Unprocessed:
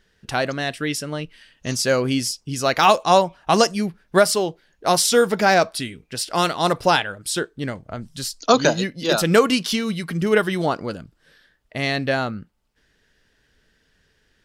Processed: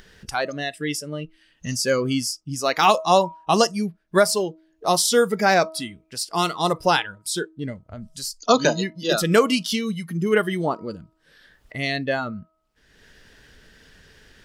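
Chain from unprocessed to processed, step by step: spectral noise reduction 13 dB; de-hum 319.4 Hz, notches 4; upward compressor, threshold -28 dBFS; gain -1.5 dB

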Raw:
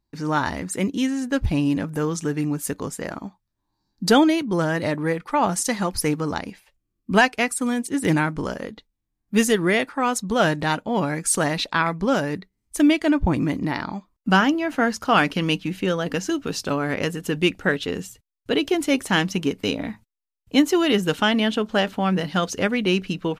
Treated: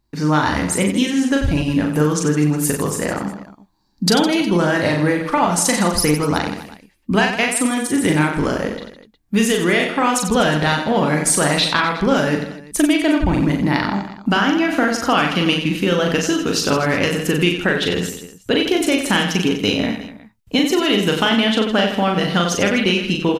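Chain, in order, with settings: dynamic EQ 3200 Hz, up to +4 dB, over -36 dBFS, Q 1.1; compressor, threshold -22 dBFS, peak gain reduction 11.5 dB; reverse bouncing-ball echo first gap 40 ms, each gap 1.3×, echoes 5; gain +7.5 dB

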